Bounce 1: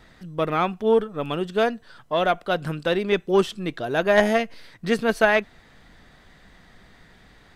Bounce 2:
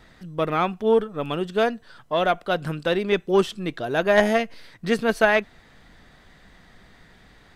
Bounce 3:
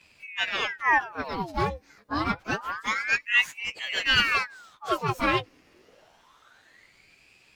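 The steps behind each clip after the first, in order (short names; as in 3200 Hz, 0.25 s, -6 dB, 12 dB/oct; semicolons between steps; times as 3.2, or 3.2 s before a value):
nothing audible
inharmonic rescaling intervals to 111%; ring modulator with a swept carrier 1400 Hz, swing 80%, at 0.27 Hz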